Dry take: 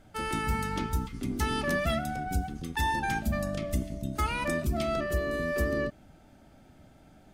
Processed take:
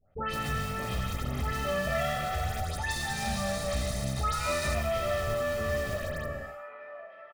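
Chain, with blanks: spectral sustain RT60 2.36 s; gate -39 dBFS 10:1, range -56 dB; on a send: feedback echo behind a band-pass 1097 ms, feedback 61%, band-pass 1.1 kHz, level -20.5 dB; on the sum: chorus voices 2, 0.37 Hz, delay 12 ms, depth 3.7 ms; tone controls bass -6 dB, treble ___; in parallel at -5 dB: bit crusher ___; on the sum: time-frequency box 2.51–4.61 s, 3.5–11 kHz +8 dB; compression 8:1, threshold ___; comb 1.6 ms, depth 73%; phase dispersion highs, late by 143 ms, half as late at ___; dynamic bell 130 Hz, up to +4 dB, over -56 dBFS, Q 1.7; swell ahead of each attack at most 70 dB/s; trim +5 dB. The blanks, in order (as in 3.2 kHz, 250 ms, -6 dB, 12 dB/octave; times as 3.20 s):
-14 dB, 5-bit, -35 dBFS, 1.8 kHz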